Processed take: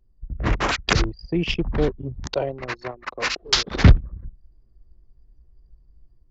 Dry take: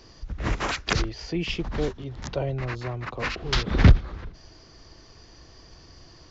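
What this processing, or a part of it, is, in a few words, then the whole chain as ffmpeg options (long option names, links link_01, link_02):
voice memo with heavy noise removal: -filter_complex "[0:a]asettb=1/sr,asplit=3[link_01][link_02][link_03];[link_01]atrim=end=2.274[link_04];[link_02]atrim=start=2.27:end=3.84,asetpts=PTS-STARTPTS,afade=type=in:duration=0.004:curve=qsin,afade=type=out:start_time=1.566:duration=0.004:curve=qsin,bass=frequency=250:gain=-12,treble=frequency=4000:gain=12[link_05];[link_03]atrim=start=3.836[link_06];[link_04][link_05]acrossfade=duration=0.004:curve1=hsin:curve2=qsin[link_07];[link_07][link_06]acrossfade=duration=0.004:curve1=qsin:curve2=hsin,anlmdn=25.1,dynaudnorm=framelen=150:gausssize=5:maxgain=6dB"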